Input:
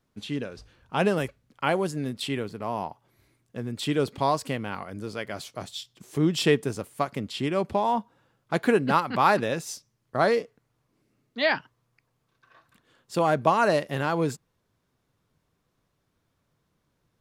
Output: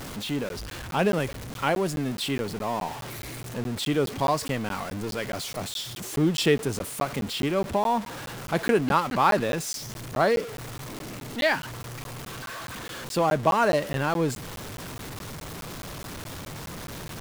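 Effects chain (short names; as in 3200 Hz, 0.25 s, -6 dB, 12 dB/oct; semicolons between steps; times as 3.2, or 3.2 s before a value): zero-crossing step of -30.5 dBFS; crackling interface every 0.21 s, samples 512, zero, from 0.49; gain -1 dB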